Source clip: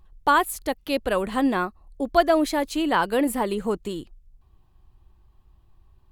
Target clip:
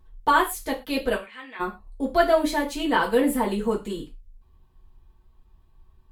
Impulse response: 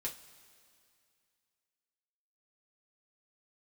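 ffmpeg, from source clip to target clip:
-filter_complex "[0:a]asplit=3[a][b][c];[a]afade=t=out:st=1.14:d=0.02[d];[b]bandpass=f=2.3k:t=q:w=3.2:csg=0,afade=t=in:st=1.14:d=0.02,afade=t=out:st=1.59:d=0.02[e];[c]afade=t=in:st=1.59:d=0.02[f];[d][e][f]amix=inputs=3:normalize=0[g];[1:a]atrim=start_sample=2205,afade=t=out:st=0.17:d=0.01,atrim=end_sample=7938,asetrate=42336,aresample=44100[h];[g][h]afir=irnorm=-1:irlink=0"

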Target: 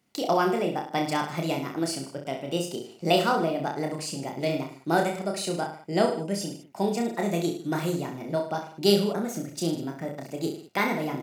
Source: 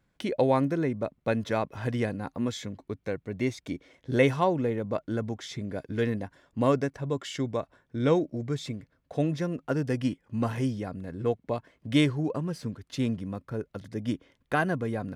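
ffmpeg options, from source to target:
-filter_complex "[0:a]highpass=120,asetrate=59535,aresample=44100,bass=f=250:g=3,treble=f=4k:g=8,asplit=2[a][b];[b]aecho=0:1:30|64.5|104.2|149.8|202.3:0.631|0.398|0.251|0.158|0.1[c];[a][c]amix=inputs=2:normalize=0,volume=-1dB"

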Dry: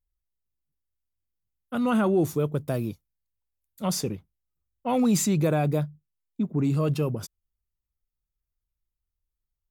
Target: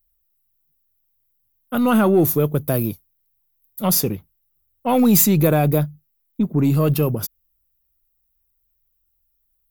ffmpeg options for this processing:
-af "aeval=exprs='0.224*(cos(1*acos(clip(val(0)/0.224,-1,1)))-cos(1*PI/2))+0.00398*(cos(6*acos(clip(val(0)/0.224,-1,1)))-cos(6*PI/2))':c=same,aexciter=amount=6.7:drive=5.1:freq=11k,volume=7dB"

